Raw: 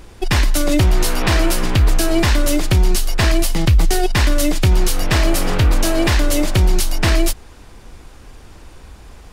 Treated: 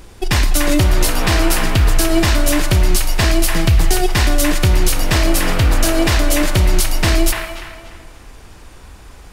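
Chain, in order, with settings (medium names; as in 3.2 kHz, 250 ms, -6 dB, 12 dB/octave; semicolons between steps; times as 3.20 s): treble shelf 5.9 kHz +4.5 dB; feedback echo behind a band-pass 293 ms, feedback 30%, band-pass 1.5 kHz, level -3 dB; on a send at -11.5 dB: reverberation RT60 1.9 s, pre-delay 13 ms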